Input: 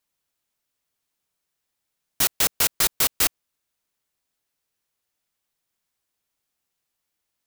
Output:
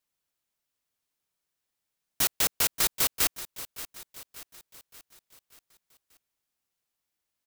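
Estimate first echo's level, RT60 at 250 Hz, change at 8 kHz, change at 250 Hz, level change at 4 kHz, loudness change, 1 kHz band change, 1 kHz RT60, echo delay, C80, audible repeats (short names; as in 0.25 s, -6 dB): -15.0 dB, none, -4.5 dB, -4.5 dB, -4.5 dB, -5.5 dB, -4.5 dB, none, 0.58 s, none, 4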